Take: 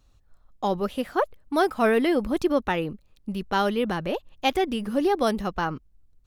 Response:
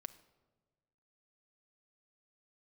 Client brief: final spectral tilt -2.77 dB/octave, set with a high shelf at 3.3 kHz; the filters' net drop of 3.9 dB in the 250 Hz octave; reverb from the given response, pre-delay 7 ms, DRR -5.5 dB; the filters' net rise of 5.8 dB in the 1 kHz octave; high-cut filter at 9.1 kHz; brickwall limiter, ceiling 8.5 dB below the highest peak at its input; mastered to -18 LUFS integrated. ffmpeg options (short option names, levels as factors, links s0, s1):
-filter_complex "[0:a]lowpass=9100,equalizer=f=250:t=o:g=-6,equalizer=f=1000:t=o:g=7.5,highshelf=f=3300:g=7,alimiter=limit=0.2:level=0:latency=1,asplit=2[s0][s1];[1:a]atrim=start_sample=2205,adelay=7[s2];[s1][s2]afir=irnorm=-1:irlink=0,volume=3.16[s3];[s0][s3]amix=inputs=2:normalize=0,volume=1.26"